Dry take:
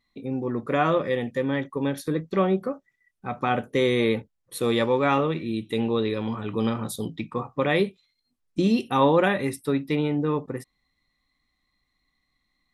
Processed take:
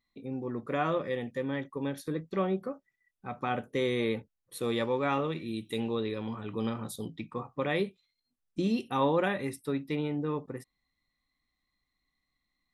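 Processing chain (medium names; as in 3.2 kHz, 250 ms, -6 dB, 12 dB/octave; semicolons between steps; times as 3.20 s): 5.24–5.95 s: treble shelf 5.3 kHz +11 dB; trim -7.5 dB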